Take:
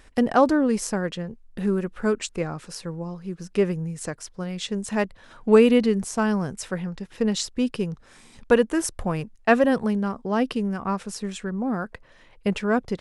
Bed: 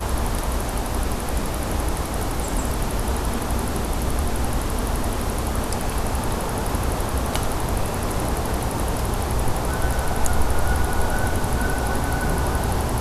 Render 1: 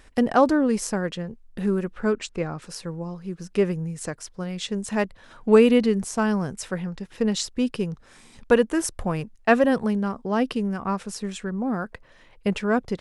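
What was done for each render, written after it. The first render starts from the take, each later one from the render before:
0:01.92–0:02.62: high-frequency loss of the air 60 metres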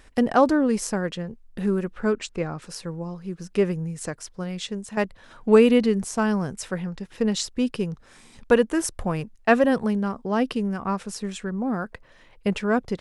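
0:04.55–0:04.97: fade out, to −9.5 dB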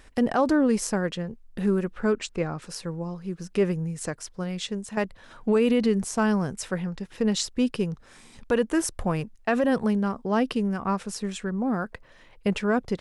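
brickwall limiter −13 dBFS, peak gain reduction 9 dB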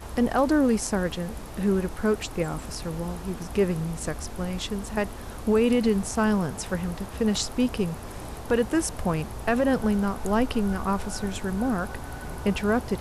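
mix in bed −14 dB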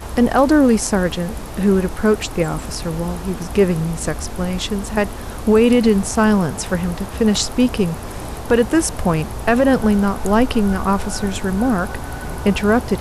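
level +8.5 dB

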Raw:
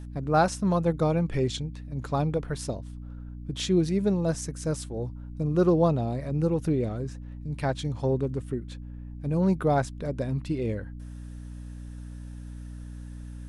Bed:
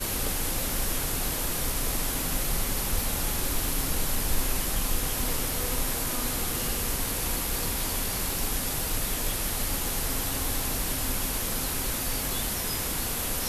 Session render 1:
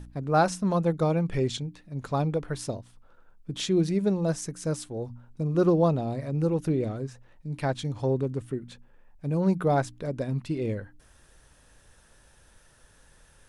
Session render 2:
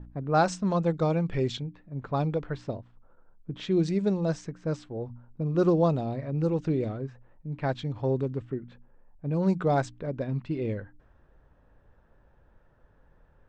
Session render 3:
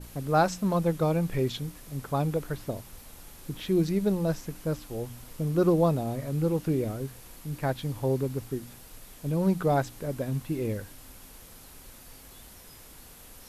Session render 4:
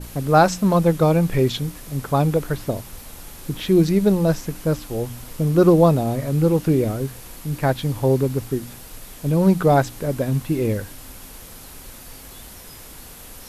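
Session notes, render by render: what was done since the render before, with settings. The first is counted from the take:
hum removal 60 Hz, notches 5
elliptic low-pass filter 8,100 Hz, stop band 40 dB; low-pass that shuts in the quiet parts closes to 1,000 Hz, open at −19.5 dBFS
mix in bed −20 dB
level +9 dB; brickwall limiter −3 dBFS, peak gain reduction 1 dB

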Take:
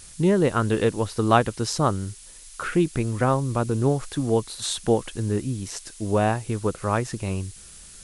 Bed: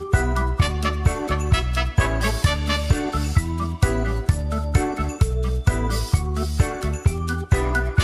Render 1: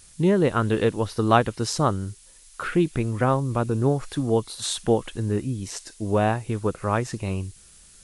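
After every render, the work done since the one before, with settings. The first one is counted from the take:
noise reduction from a noise print 6 dB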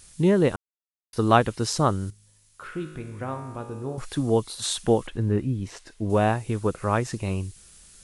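0:00.56–0:01.13: silence
0:02.10–0:03.98: tuned comb filter 52 Hz, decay 1.4 s, mix 80%
0:05.07–0:06.10: bass and treble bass +2 dB, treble −13 dB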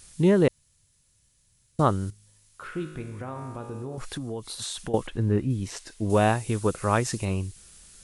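0:00.48–0:01.79: fill with room tone
0:03.17–0:04.94: downward compressor, threshold −30 dBFS
0:05.50–0:07.25: high-shelf EQ 3,800 Hz +8.5 dB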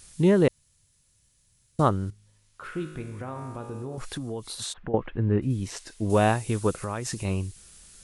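0:01.88–0:02.63: high-shelf EQ 4,300 Hz → 7,200 Hz −12 dB
0:04.72–0:05.41: low-pass filter 1,700 Hz → 3,500 Hz 24 dB per octave
0:06.77–0:07.25: downward compressor 5 to 1, threshold −27 dBFS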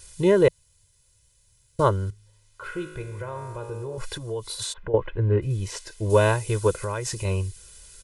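parametric band 160 Hz −6.5 dB 0.27 octaves
comb filter 2 ms, depth 97%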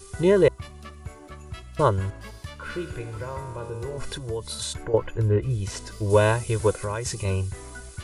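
mix in bed −19.5 dB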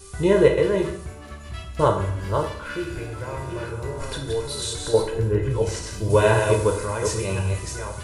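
delay that plays each chunk backwards 528 ms, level −5 dB
dense smooth reverb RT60 0.61 s, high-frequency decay 0.9×, DRR 1 dB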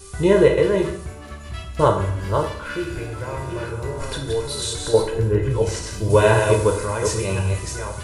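level +2.5 dB
brickwall limiter −2 dBFS, peak gain reduction 2 dB

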